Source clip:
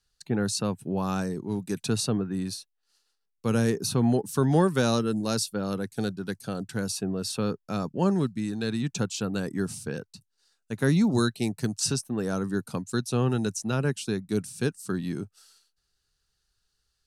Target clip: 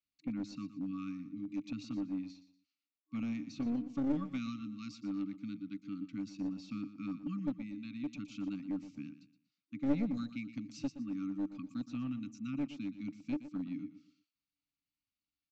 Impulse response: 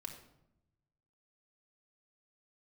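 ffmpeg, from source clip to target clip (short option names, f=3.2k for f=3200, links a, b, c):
-filter_complex "[0:a]asplit=3[a][b][c];[a]bandpass=f=300:t=q:w=8,volume=0dB[d];[b]bandpass=f=870:t=q:w=8,volume=-6dB[e];[c]bandpass=f=2.24k:t=q:w=8,volume=-9dB[f];[d][e][f]amix=inputs=3:normalize=0,adynamicequalizer=threshold=0.00398:dfrequency=210:dqfactor=0.87:tfrequency=210:tqfactor=0.87:attack=5:release=100:ratio=0.375:range=2.5:mode=cutabove:tftype=bell,afftfilt=real='re*(1-between(b*sr/4096,310,1100))':imag='im*(1-between(b*sr/4096,310,1100))':win_size=4096:overlap=0.75,aresample=16000,aeval=exprs='clip(val(0),-1,0.0141)':c=same,aresample=44100,atempo=1.1,asplit=2[g][h];[h]aecho=0:1:119|238|357:0.211|0.0634|0.019[i];[g][i]amix=inputs=2:normalize=0,volume=4dB"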